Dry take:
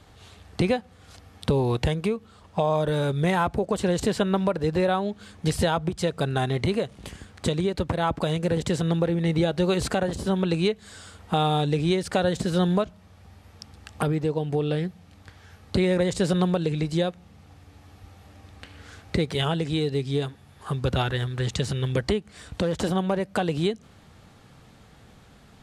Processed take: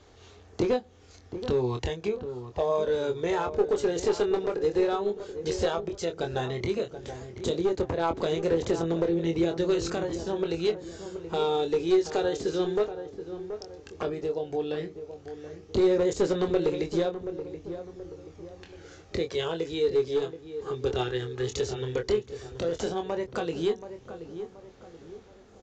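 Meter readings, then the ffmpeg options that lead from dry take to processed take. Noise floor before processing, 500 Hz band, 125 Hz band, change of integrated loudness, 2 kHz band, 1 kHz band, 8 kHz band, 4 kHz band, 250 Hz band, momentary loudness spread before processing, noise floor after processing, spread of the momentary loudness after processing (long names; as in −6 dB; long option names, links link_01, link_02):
−53 dBFS, +0.5 dB, −11.5 dB, −3.5 dB, −6.5 dB, −5.5 dB, −4.0 dB, −5.5 dB, −5.0 dB, 10 LU, −53 dBFS, 15 LU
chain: -filter_complex "[0:a]equalizer=frequency=160:width_type=o:width=0.67:gain=-9,equalizer=frequency=400:width_type=o:width=0.67:gain=9,equalizer=frequency=6300:width_type=o:width=0.67:gain=7,aphaser=in_gain=1:out_gain=1:delay=2.5:decay=0.33:speed=0.12:type=sinusoidal,aresample=16000,aeval=exprs='clip(val(0),-1,0.237)':channel_layout=same,aresample=44100,asplit=2[link_01][link_02];[link_02]adelay=24,volume=-6.5dB[link_03];[link_01][link_03]amix=inputs=2:normalize=0,asplit=2[link_04][link_05];[link_05]adelay=728,lowpass=frequency=1200:poles=1,volume=-10dB,asplit=2[link_06][link_07];[link_07]adelay=728,lowpass=frequency=1200:poles=1,volume=0.45,asplit=2[link_08][link_09];[link_09]adelay=728,lowpass=frequency=1200:poles=1,volume=0.45,asplit=2[link_10][link_11];[link_11]adelay=728,lowpass=frequency=1200:poles=1,volume=0.45,asplit=2[link_12][link_13];[link_13]adelay=728,lowpass=frequency=1200:poles=1,volume=0.45[link_14];[link_04][link_06][link_08][link_10][link_12][link_14]amix=inputs=6:normalize=0,volume=-8dB"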